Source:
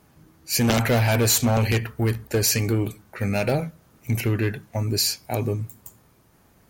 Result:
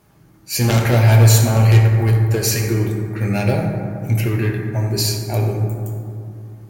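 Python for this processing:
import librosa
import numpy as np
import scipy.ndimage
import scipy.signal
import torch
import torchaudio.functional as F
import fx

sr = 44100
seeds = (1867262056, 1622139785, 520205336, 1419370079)

y = fx.rev_fdn(x, sr, rt60_s=2.5, lf_ratio=1.45, hf_ratio=0.35, size_ms=50.0, drr_db=-0.5)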